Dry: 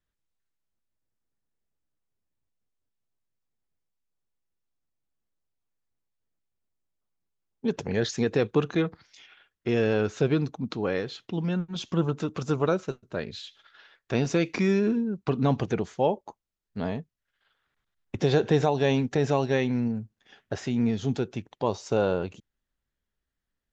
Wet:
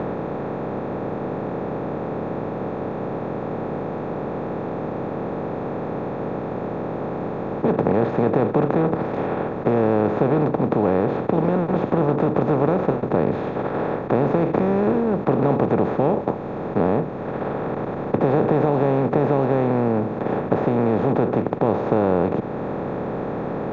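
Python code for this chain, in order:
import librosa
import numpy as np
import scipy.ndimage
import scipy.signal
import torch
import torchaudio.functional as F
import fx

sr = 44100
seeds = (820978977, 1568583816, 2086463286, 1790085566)

y = fx.bin_compress(x, sr, power=0.2)
y = scipy.signal.sosfilt(scipy.signal.butter(2, 1100.0, 'lowpass', fs=sr, output='sos'), y)
y = fx.band_squash(y, sr, depth_pct=40)
y = F.gain(torch.from_numpy(y), -1.5).numpy()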